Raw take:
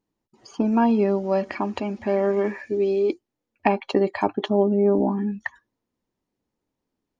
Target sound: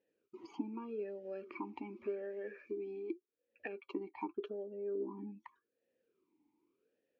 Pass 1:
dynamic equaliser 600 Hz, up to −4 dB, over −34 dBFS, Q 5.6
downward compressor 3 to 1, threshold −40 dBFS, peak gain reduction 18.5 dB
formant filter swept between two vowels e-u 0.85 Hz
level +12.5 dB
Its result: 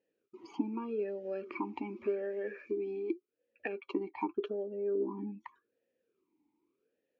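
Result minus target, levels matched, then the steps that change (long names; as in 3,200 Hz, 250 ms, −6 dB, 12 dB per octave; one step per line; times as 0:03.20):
downward compressor: peak gain reduction −6 dB
change: downward compressor 3 to 1, threshold −49 dBFS, peak gain reduction 24.5 dB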